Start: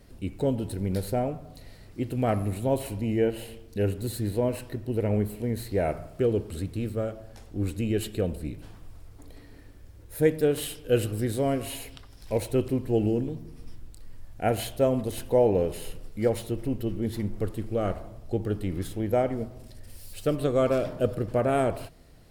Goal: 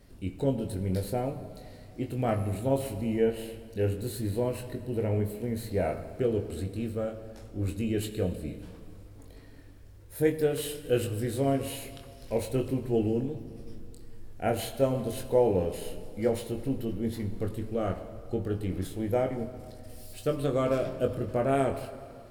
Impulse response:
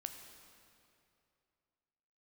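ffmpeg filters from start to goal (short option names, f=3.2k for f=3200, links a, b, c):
-filter_complex "[0:a]asplit=2[a][b];[1:a]atrim=start_sample=2205,adelay=22[c];[b][c]afir=irnorm=-1:irlink=0,volume=-2dB[d];[a][d]amix=inputs=2:normalize=0,volume=-3.5dB"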